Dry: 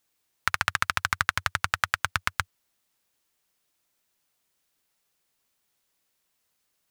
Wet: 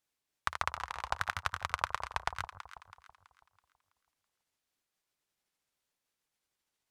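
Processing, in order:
pitch shifter swept by a sawtooth −7 semitones, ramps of 1,147 ms
high-shelf EQ 9,900 Hz −7.5 dB
delay that swaps between a low-pass and a high-pass 164 ms, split 1,000 Hz, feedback 62%, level −8.5 dB
level −7.5 dB

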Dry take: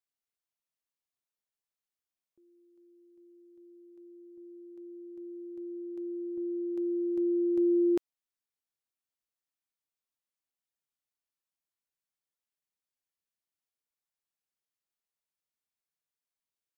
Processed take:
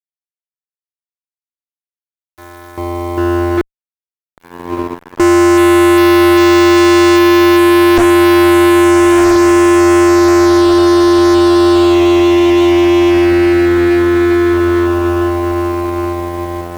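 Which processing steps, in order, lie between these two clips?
sub-octave generator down 2 octaves, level −6 dB
compressor whose output falls as the input rises −31 dBFS, ratio −0.5
0:03.61–0:05.20: pair of resonant band-passes 350 Hz, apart 1.2 octaves
feedback delay with all-pass diffusion 1,326 ms, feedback 60%, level −6 dB
fuzz pedal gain 55 dB, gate −57 dBFS
level +6.5 dB

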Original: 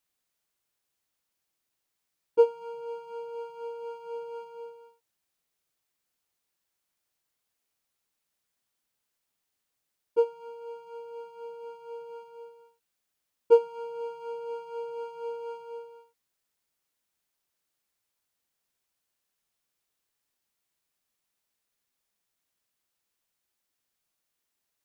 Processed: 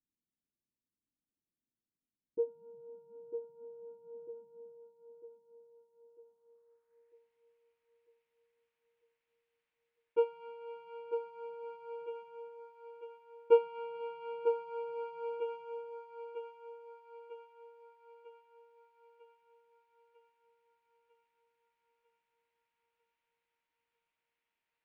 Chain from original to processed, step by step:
low-pass filter sweep 260 Hz → 2,400 Hz, 0:05.41–0:07.22
feedback echo with a high-pass in the loop 948 ms, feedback 61%, high-pass 330 Hz, level −6 dB
level −5.5 dB

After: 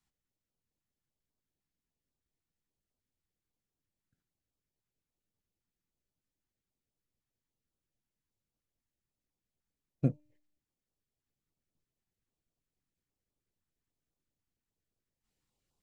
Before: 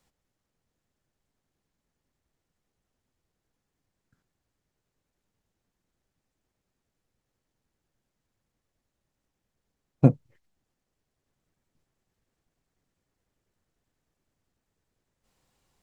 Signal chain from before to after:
tuned comb filter 300 Hz, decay 0.74 s, mix 40%
notch on a step sequencer 10 Hz 530–1,900 Hz
level −6.5 dB

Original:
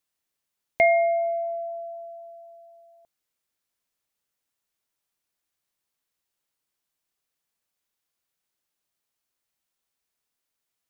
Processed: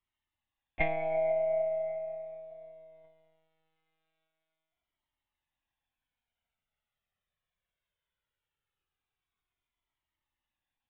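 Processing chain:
coupled-rooms reverb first 0.34 s, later 3.2 s, from −17 dB, DRR 0 dB
one-pitch LPC vocoder at 8 kHz 160 Hz
flanger whose copies keep moving one way falling 0.2 Hz

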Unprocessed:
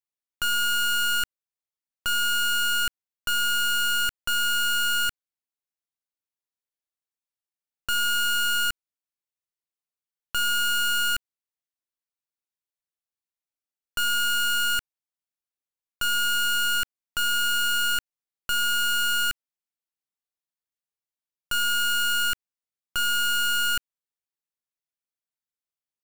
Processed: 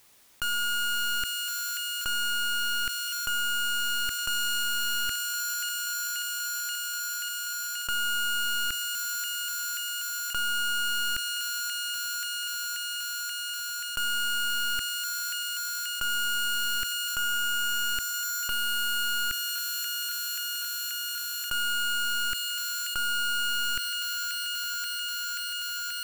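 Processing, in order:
on a send: delay with a high-pass on its return 532 ms, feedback 80%, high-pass 2,200 Hz, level −10 dB
on the sum: envelope flattener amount 70%
level −5 dB

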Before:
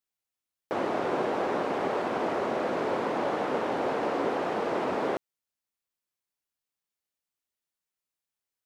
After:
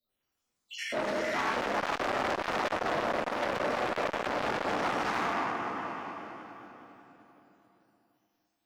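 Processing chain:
time-frequency cells dropped at random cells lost 77%
in parallel at −1 dB: brickwall limiter −27 dBFS, peak gain reduction 8.5 dB
on the sum: delay that swaps between a low-pass and a high-pass 101 ms, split 990 Hz, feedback 81%, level −11 dB
rectangular room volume 150 cubic metres, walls hard, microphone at 1.9 metres
dynamic equaliser 2,400 Hz, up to −5 dB, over −38 dBFS, Q 0.96
hard clipping −19 dBFS, distortion −7 dB
formants moved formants +4 semitones
parametric band 5,100 Hz +4.5 dB 0.59 octaves
saturating transformer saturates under 1,700 Hz
level −3.5 dB

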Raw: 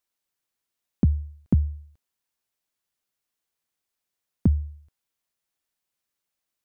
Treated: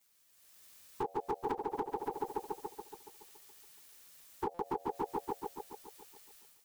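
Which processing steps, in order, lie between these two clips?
partials spread apart or drawn together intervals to 110%
spectral tilt +2 dB per octave
echo machine with several playback heads 141 ms, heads first and second, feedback 47%, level −7 dB
automatic gain control gain up to 11 dB
high-pass filter 190 Hz 24 dB per octave
downward compressor 20 to 1, threshold −36 dBFS, peak gain reduction 20 dB
ring modulation 630 Hz
brickwall limiter −40 dBFS, peak gain reduction 13 dB
buffer that repeats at 0:04.54, samples 256, times 8
level +15.5 dB

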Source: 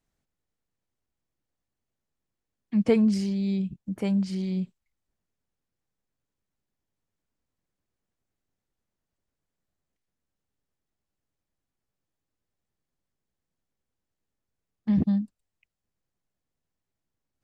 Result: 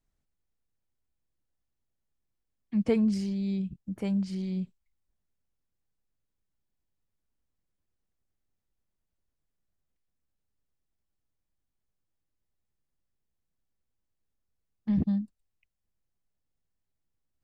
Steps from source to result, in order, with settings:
low-shelf EQ 79 Hz +10.5 dB
level −5 dB

